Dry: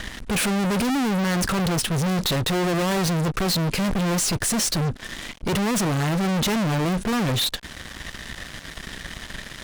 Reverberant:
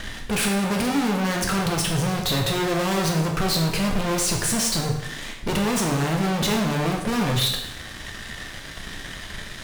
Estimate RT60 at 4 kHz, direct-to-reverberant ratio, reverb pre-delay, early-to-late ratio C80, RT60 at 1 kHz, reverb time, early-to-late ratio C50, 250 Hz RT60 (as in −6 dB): 0.75 s, 1.0 dB, 6 ms, 7.5 dB, 0.80 s, 0.80 s, 5.0 dB, 0.85 s